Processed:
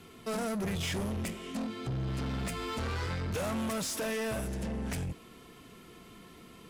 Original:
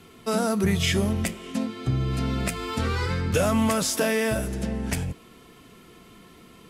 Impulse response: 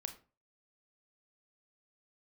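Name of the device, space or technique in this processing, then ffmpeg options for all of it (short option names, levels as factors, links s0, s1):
saturation between pre-emphasis and de-emphasis: -af "highshelf=f=12000:g=9,asoftclip=type=tanh:threshold=0.0376,highshelf=f=12000:g=-9,volume=0.75"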